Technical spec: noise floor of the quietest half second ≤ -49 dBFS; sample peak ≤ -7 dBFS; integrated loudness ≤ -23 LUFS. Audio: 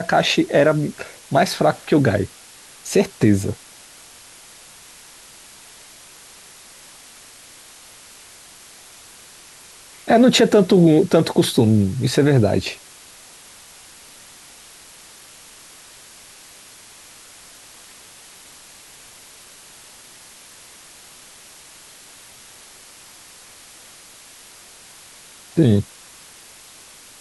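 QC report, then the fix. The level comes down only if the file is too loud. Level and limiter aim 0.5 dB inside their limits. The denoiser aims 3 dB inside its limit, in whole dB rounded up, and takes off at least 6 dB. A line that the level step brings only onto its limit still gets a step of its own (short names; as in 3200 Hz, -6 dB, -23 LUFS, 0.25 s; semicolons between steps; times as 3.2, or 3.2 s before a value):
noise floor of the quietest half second -44 dBFS: fail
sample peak -4.5 dBFS: fail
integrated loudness -17.0 LUFS: fail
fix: gain -6.5 dB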